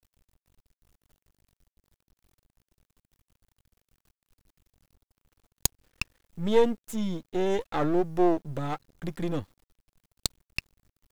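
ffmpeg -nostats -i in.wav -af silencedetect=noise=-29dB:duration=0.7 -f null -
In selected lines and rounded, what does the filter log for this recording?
silence_start: 0.00
silence_end: 5.65 | silence_duration: 5.65
silence_start: 9.41
silence_end: 10.26 | silence_duration: 0.85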